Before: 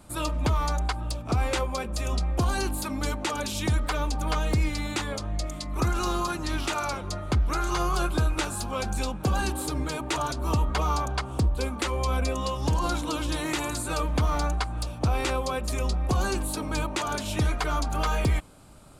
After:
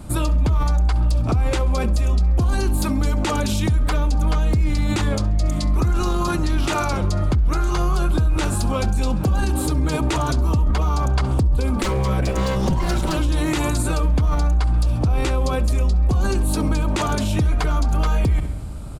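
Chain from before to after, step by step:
0:11.83–0:13.17: lower of the sound and its delayed copy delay 5.3 ms
low-shelf EQ 310 Hz +11.5 dB
repeating echo 67 ms, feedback 47%, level −21 dB
on a send at −24 dB: convolution reverb RT60 1.3 s, pre-delay 46 ms
on the sum: brickwall limiter −20 dBFS, peak gain reduction 14.5 dB
level +7.5 dB

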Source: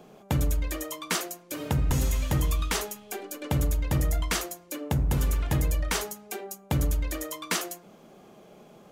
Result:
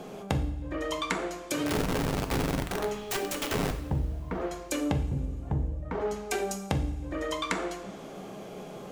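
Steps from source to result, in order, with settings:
treble cut that deepens with the level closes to 380 Hz, closed at −21.5 dBFS
downward compressor 6 to 1, threshold −36 dBFS, peak gain reduction 13.5 dB
0:01.66–0:03.73: wrap-around overflow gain 33.5 dB
coupled-rooms reverb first 0.6 s, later 2.9 s, from −17 dB, DRR 5 dB
level +8.5 dB

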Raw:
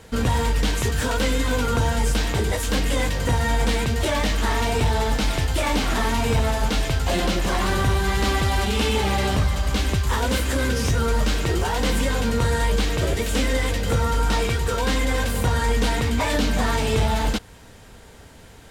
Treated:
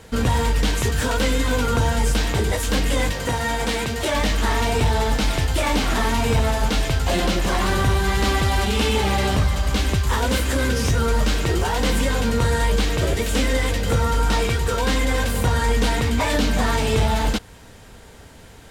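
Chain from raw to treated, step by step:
0:03.12–0:04.14: low-shelf EQ 140 Hz −10 dB
level +1.5 dB

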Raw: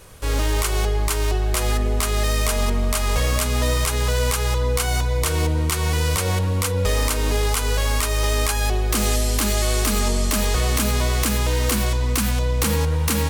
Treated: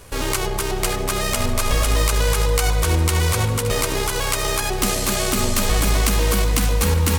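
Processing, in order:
mains-hum notches 50/100/150/200/250 Hz
time stretch by overlap-add 0.54×, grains 32 ms
echo with a time of its own for lows and highs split 1,100 Hz, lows 132 ms, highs 572 ms, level −11.5 dB
level +3 dB

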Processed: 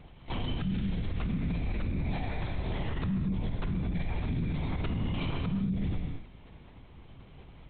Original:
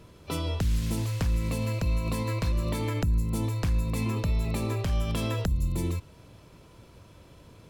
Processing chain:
0:02.12–0:02.68: high-pass filter 110 Hz 12 dB per octave
frequency shifter −250 Hz
linear-prediction vocoder at 8 kHz whisper
reverb whose tail is shaped and stops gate 260 ms flat, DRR 4 dB
brickwall limiter −24 dBFS, peak gain reduction 11 dB

